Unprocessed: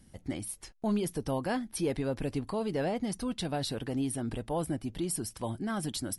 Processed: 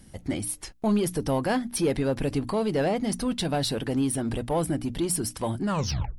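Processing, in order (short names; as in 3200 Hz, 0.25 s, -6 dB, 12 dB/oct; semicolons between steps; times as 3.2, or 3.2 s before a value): tape stop at the end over 0.55 s; notches 60/120/180/240/300 Hz; in parallel at -7 dB: hard clip -36 dBFS, distortion -6 dB; on the sum: gain +5 dB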